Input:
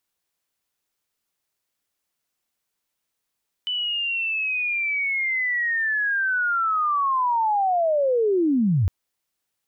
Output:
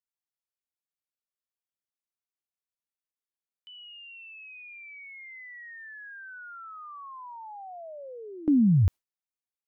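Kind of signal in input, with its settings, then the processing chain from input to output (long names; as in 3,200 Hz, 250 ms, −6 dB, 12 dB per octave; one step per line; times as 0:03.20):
glide linear 3,000 Hz → 80 Hz −23 dBFS → −16.5 dBFS 5.21 s
noise gate with hold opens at −17 dBFS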